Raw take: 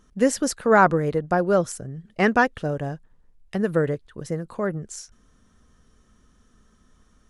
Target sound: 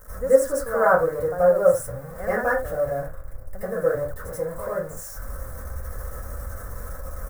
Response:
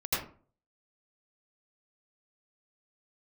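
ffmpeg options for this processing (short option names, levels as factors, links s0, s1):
-filter_complex "[0:a]aeval=exprs='val(0)+0.5*0.0473*sgn(val(0))':c=same,firequalizer=gain_entry='entry(100,0);entry(160,-13);entry(230,-10);entry(360,-14);entry(520,6);entry(840,-6);entry(1500,1);entry(2700,-26);entry(7800,-3);entry(13000,5)':delay=0.05:min_phase=1[s0];[1:a]atrim=start_sample=2205,afade=t=out:st=0.23:d=0.01,atrim=end_sample=10584[s1];[s0][s1]afir=irnorm=-1:irlink=0,volume=0.355"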